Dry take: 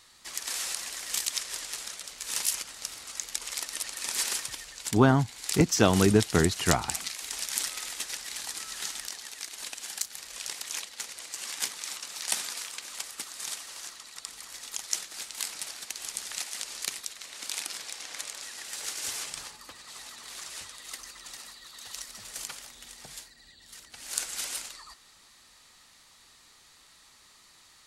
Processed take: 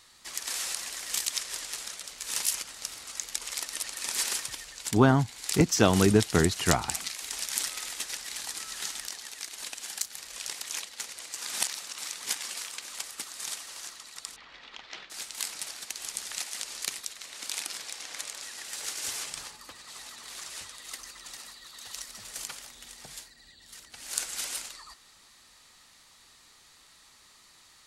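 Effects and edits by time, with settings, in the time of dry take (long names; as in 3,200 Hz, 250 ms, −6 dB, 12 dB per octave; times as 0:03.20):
0:11.41–0:12.54: reverse
0:14.36–0:15.10: low-pass filter 3,500 Hz 24 dB per octave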